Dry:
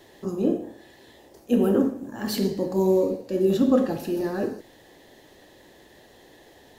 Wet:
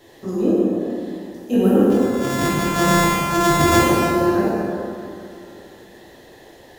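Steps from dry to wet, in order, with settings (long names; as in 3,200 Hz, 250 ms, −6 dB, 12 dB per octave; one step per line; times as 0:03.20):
0:01.90–0:03.83: samples sorted by size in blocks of 128 samples
dense smooth reverb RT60 2.7 s, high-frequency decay 0.55×, DRR −6 dB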